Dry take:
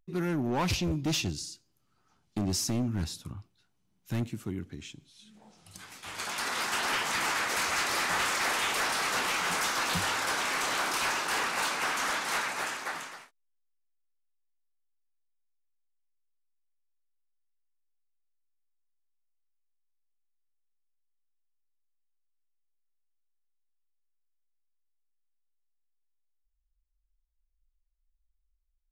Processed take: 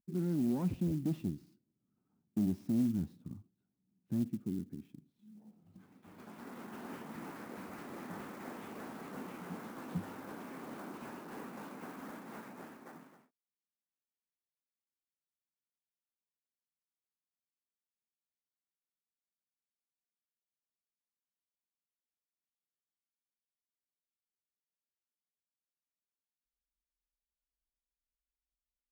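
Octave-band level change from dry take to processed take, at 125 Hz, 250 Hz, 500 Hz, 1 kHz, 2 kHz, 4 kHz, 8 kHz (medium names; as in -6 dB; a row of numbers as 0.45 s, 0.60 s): -5.0 dB, -0.5 dB, -9.0 dB, -18.0 dB, -24.0 dB, -28.5 dB, -26.5 dB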